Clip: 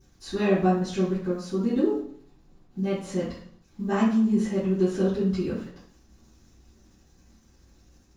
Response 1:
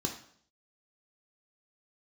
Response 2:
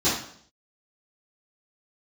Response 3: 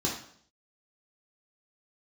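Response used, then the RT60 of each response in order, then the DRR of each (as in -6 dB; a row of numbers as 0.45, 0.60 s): 2; 0.60, 0.60, 0.60 s; 3.0, -12.5, -3.0 dB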